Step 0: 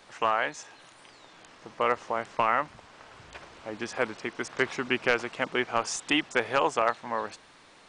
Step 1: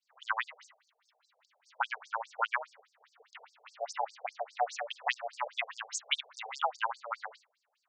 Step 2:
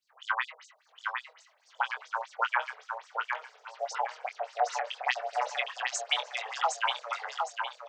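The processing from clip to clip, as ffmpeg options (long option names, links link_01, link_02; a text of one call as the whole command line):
ffmpeg -i in.wav -af "afreqshift=340,agate=range=-33dB:threshold=-43dB:ratio=3:detection=peak,afftfilt=real='re*between(b*sr/1024,550*pow(6400/550,0.5+0.5*sin(2*PI*4.9*pts/sr))/1.41,550*pow(6400/550,0.5+0.5*sin(2*PI*4.9*pts/sr))*1.41)':imag='im*between(b*sr/1024,550*pow(6400/550,0.5+0.5*sin(2*PI*4.9*pts/sr))/1.41,550*pow(6400/550,0.5+0.5*sin(2*PI*4.9*pts/sr))*1.41)':win_size=1024:overlap=0.75" out.wav
ffmpeg -i in.wav -filter_complex "[0:a]asplit=2[link_01][link_02];[link_02]adelay=23,volume=-7.5dB[link_03];[link_01][link_03]amix=inputs=2:normalize=0,asplit=2[link_04][link_05];[link_05]aecho=0:1:761|1522|2283|3044:0.631|0.208|0.0687|0.0227[link_06];[link_04][link_06]amix=inputs=2:normalize=0,volume=2dB" out.wav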